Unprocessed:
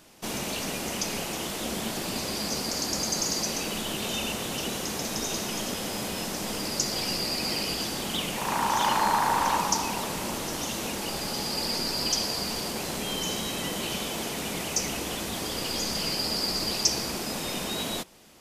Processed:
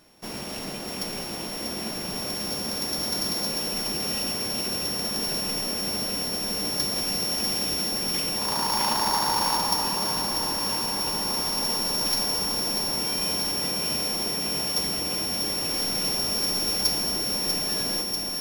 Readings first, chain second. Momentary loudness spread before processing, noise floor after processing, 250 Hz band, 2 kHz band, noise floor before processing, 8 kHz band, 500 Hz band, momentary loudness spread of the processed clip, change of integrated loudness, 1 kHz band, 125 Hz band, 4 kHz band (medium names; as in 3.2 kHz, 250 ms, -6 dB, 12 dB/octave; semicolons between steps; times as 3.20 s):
7 LU, -34 dBFS, -0.5 dB, -2.5 dB, -34 dBFS, +1.5 dB, -0.5 dB, 7 LU, +3.5 dB, -1.5 dB, -0.5 dB, +4.0 dB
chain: sorted samples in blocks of 8 samples; echo whose repeats swap between lows and highs 321 ms, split 1 kHz, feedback 89%, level -6.5 dB; trim -2.5 dB